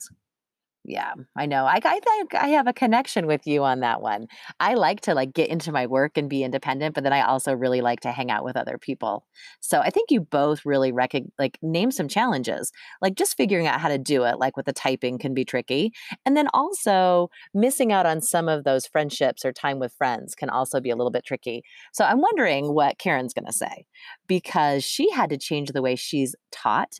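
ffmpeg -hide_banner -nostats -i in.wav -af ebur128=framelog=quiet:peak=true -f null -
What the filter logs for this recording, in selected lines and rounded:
Integrated loudness:
  I:         -23.3 LUFS
  Threshold: -33.5 LUFS
Loudness range:
  LRA:         2.7 LU
  Threshold: -43.4 LUFS
  LRA low:   -24.6 LUFS
  LRA high:  -21.9 LUFS
True peak:
  Peak:       -8.5 dBFS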